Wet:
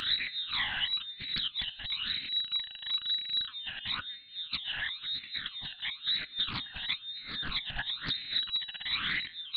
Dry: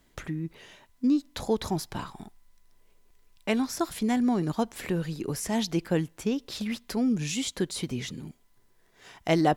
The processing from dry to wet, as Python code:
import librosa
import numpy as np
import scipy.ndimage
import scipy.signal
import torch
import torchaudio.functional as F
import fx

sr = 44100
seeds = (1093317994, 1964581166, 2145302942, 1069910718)

y = x + 0.5 * 10.0 ** (-28.0 / 20.0) * np.sign(x)
y = fx.freq_invert(y, sr, carrier_hz=3900)
y = fx.low_shelf(y, sr, hz=190.0, db=-9.5)
y = fx.over_compress(y, sr, threshold_db=-34.0, ratio=-1.0)
y = fx.band_shelf(y, sr, hz=580.0, db=-10.5, octaves=1.7)
y = fx.rev_double_slope(y, sr, seeds[0], early_s=0.2, late_s=2.6, knee_db=-18, drr_db=17.0)
y = fx.phaser_stages(y, sr, stages=12, low_hz=380.0, high_hz=1100.0, hz=1.0, feedback_pct=50)
y = fx.doppler_dist(y, sr, depth_ms=0.63)